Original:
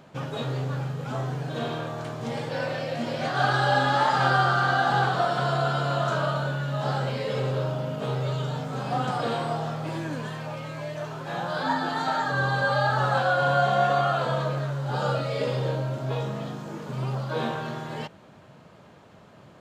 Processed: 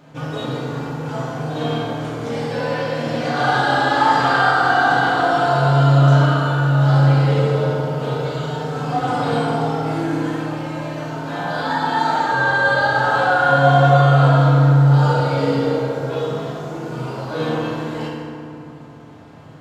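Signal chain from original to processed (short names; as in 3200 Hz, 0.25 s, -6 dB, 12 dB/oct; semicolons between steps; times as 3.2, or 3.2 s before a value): FDN reverb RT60 2.5 s, low-frequency decay 1.4×, high-frequency decay 0.5×, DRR -6 dB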